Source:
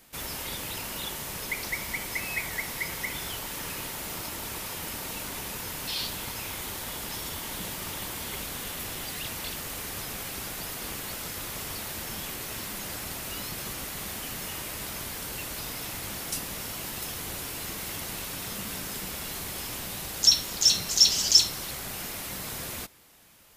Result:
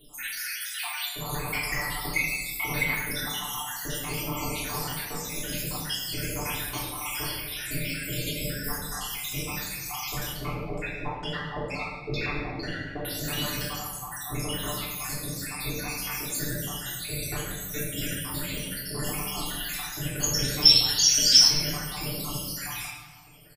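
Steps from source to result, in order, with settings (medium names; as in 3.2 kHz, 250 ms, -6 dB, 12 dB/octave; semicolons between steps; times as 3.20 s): random holes in the spectrogram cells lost 81%; comb 6.8 ms, depth 80%; 10.32–13.05 s: LFO low-pass saw down 2.2 Hz 380–3800 Hz; simulated room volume 990 m³, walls mixed, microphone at 3.3 m; trim +2 dB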